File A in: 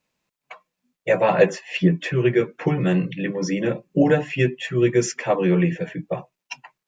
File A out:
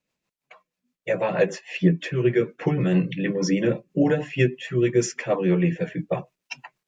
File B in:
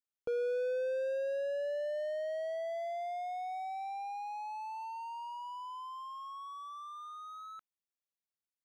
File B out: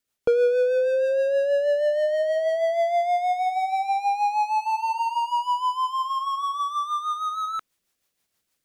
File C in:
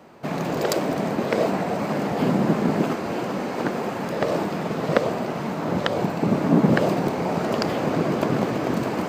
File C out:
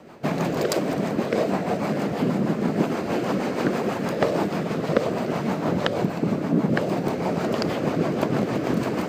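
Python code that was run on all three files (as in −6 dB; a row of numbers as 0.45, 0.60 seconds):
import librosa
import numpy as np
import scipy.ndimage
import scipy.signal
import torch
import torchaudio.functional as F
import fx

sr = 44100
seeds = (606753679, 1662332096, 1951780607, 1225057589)

y = fx.rider(x, sr, range_db=4, speed_s=0.5)
y = fx.rotary(y, sr, hz=6.3)
y = y * 10.0 ** (-24 / 20.0) / np.sqrt(np.mean(np.square(y)))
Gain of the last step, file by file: 0.0, +18.5, +1.0 decibels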